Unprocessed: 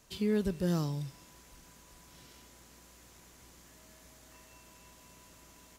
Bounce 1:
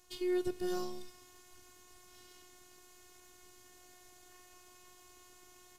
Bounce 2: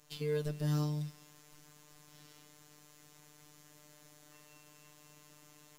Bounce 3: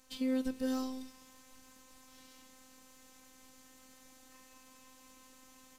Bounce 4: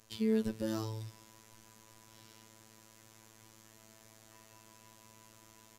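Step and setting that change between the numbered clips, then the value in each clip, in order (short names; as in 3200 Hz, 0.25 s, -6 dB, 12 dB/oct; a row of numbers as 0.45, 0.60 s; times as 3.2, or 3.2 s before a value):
robotiser, frequency: 360, 150, 260, 110 Hz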